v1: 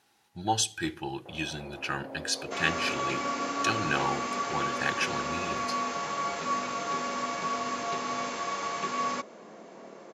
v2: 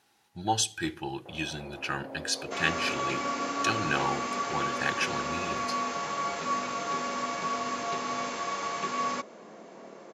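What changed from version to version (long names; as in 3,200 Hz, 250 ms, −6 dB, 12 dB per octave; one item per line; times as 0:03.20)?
nothing changed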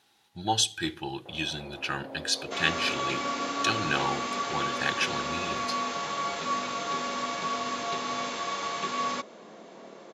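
master: add parametric band 3,600 Hz +7 dB 0.54 octaves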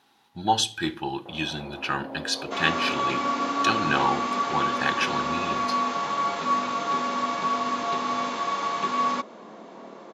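speech: send +7.5 dB
master: add graphic EQ with 10 bands 250 Hz +6 dB, 1,000 Hz +7 dB, 8,000 Hz −4 dB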